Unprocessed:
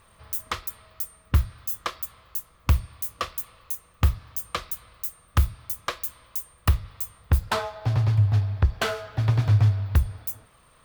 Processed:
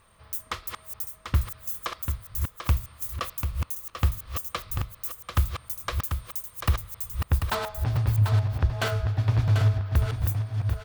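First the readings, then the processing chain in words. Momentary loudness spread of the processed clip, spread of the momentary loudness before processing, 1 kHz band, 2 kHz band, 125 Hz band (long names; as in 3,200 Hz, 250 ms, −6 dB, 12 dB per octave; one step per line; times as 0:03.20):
11 LU, 12 LU, −1.5 dB, −1.5 dB, −1.5 dB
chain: delay that plays each chunk backwards 632 ms, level −6.5 dB
on a send: single-tap delay 741 ms −7 dB
on the sum: level −3 dB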